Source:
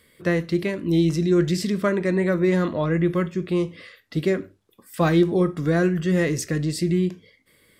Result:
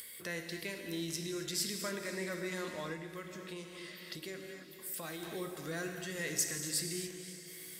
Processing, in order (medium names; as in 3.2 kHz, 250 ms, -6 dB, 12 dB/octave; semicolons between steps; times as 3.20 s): peak limiter -14 dBFS, peak gain reduction 6 dB; pre-emphasis filter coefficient 0.8; band-stop 1.2 kHz, Q 27; gated-style reverb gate 300 ms flat, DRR 4.5 dB; upward compressor, threshold -37 dBFS; echo that smears into a reverb 528 ms, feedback 45%, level -14 dB; 2.93–5.23 s: compression 4:1, threshold -36 dBFS, peak gain reduction 6 dB; bass shelf 420 Hz -10.5 dB